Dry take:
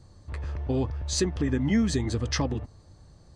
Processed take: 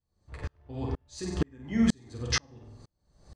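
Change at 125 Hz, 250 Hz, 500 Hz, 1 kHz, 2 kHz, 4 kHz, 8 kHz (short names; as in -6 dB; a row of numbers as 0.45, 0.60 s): -7.0, -3.0, -7.5, -4.0, -1.0, -2.0, -4.0 dB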